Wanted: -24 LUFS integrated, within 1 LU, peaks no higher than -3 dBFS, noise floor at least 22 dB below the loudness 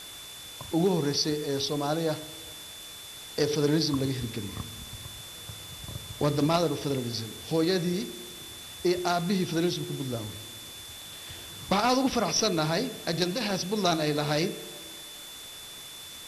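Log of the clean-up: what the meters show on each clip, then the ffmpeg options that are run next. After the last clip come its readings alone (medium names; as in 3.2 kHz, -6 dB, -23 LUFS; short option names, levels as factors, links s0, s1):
steady tone 3.5 kHz; tone level -44 dBFS; noise floor -44 dBFS; noise floor target -51 dBFS; loudness -28.5 LUFS; peak level -13.5 dBFS; loudness target -24.0 LUFS
-> -af "bandreject=f=3500:w=30"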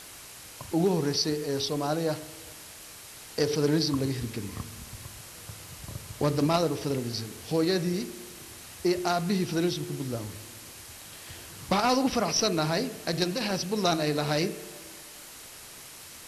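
steady tone not found; noise floor -46 dBFS; noise floor target -50 dBFS
-> -af "afftdn=nr=6:nf=-46"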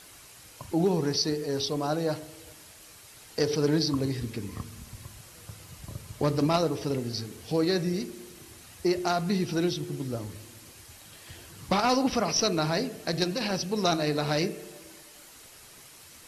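noise floor -51 dBFS; loudness -28.0 LUFS; peak level -14.0 dBFS; loudness target -24.0 LUFS
-> -af "volume=1.58"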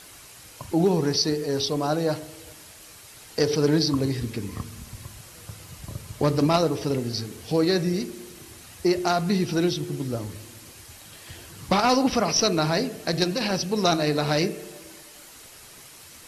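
loudness -24.0 LUFS; peak level -10.0 dBFS; noise floor -47 dBFS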